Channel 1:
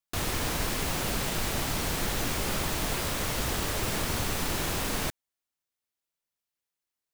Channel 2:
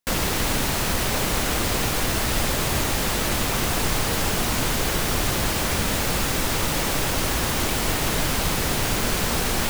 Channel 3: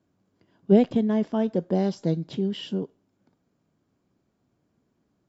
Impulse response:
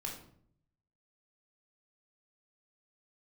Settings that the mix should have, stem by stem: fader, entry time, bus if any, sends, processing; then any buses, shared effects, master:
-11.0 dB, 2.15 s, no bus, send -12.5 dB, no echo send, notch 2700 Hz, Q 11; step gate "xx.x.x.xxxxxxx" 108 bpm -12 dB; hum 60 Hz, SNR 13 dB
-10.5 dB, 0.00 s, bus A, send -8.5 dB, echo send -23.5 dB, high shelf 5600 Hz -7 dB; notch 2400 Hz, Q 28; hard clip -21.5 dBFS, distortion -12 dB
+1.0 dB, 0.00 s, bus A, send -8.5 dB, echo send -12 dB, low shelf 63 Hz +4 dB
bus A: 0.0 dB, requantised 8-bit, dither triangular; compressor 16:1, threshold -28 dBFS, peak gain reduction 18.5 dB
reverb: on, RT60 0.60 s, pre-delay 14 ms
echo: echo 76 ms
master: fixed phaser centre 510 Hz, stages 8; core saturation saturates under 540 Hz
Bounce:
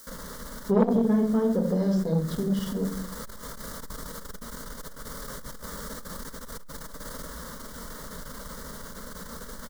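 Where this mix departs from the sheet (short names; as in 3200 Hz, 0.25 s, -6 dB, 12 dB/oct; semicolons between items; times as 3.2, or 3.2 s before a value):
stem 2: send off; reverb return +8.5 dB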